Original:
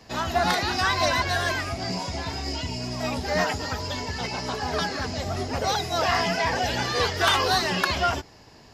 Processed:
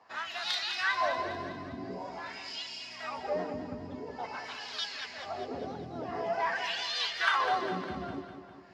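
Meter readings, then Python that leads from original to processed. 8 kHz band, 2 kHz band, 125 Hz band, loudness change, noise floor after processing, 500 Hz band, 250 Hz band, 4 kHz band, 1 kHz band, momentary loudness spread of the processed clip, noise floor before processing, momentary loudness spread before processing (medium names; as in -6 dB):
-16.0 dB, -7.5 dB, -17.5 dB, -8.5 dB, -48 dBFS, -9.0 dB, -10.0 dB, -8.5 dB, -8.5 dB, 12 LU, -50 dBFS, 8 LU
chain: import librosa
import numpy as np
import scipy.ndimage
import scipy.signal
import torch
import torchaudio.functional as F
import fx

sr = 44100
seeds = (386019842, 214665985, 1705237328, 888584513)

y = fx.peak_eq(x, sr, hz=12000.0, db=2.5, octaves=2.6)
y = fx.wah_lfo(y, sr, hz=0.47, low_hz=220.0, high_hz=3500.0, q=2.3)
y = fx.echo_feedback(y, sr, ms=202, feedback_pct=55, wet_db=-9.5)
y = F.gain(torch.from_numpy(y), -1.5).numpy()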